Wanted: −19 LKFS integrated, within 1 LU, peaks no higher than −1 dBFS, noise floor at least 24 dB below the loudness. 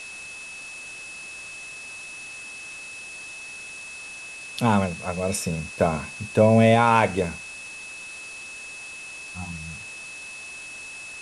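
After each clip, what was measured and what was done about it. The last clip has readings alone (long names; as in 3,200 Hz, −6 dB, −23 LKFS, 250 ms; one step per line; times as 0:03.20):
interfering tone 2,600 Hz; level of the tone −37 dBFS; background noise floor −39 dBFS; target noise floor −51 dBFS; integrated loudness −27.0 LKFS; sample peak −4.0 dBFS; target loudness −19.0 LKFS
→ notch filter 2,600 Hz, Q 30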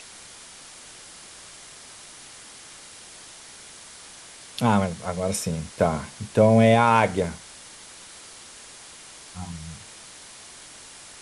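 interfering tone none found; background noise floor −45 dBFS; target noise floor −46 dBFS
→ broadband denoise 6 dB, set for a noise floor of −45 dBFS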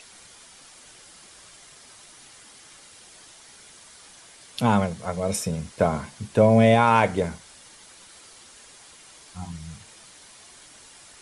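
background noise floor −50 dBFS; integrated loudness −22.0 LKFS; sample peak −4.5 dBFS; target loudness −19.0 LKFS
→ level +3 dB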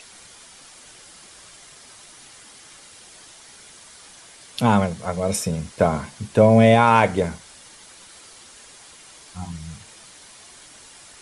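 integrated loudness −19.0 LKFS; sample peak −1.5 dBFS; background noise floor −47 dBFS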